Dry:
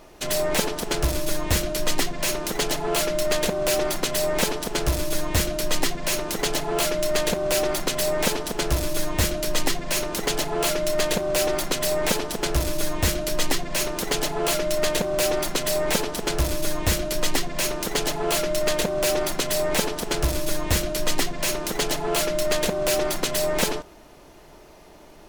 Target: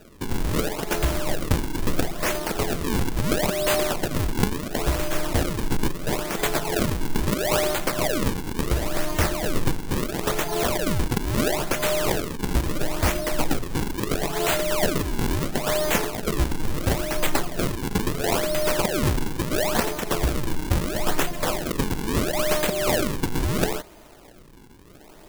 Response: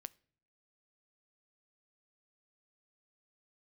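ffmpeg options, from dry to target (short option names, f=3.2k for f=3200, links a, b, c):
-af "acrusher=samples=40:mix=1:aa=0.000001:lfo=1:lforange=64:lforate=0.74,highshelf=f=6.5k:g=7"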